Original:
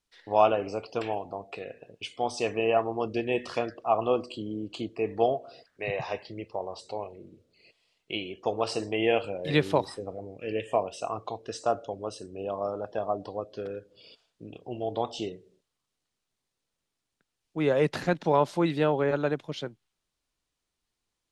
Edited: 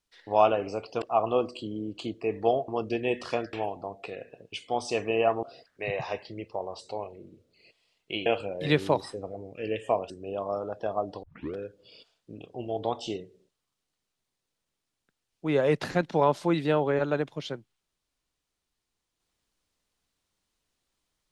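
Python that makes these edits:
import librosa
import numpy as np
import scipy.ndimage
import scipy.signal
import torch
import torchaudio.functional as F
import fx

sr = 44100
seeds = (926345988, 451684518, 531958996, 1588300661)

y = fx.edit(x, sr, fx.swap(start_s=1.02, length_s=1.9, other_s=3.77, other_length_s=1.66),
    fx.cut(start_s=8.26, length_s=0.84),
    fx.cut(start_s=10.94, length_s=1.28),
    fx.tape_start(start_s=13.35, length_s=0.32), tone=tone)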